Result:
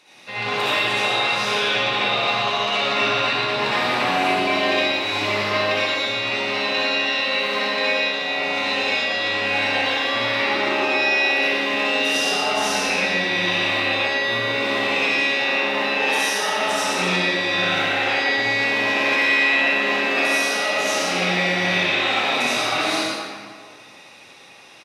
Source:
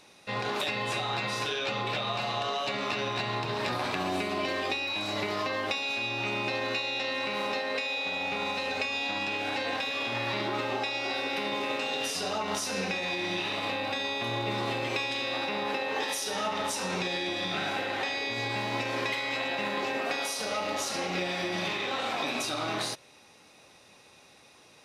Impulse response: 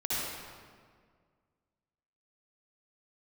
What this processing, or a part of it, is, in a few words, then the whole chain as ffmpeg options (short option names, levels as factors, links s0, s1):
PA in a hall: -filter_complex "[0:a]highpass=f=190:p=1,equalizer=f=2400:t=o:w=1.6:g=6,aecho=1:1:116:0.501[s0];[1:a]atrim=start_sample=2205[s1];[s0][s1]afir=irnorm=-1:irlink=0"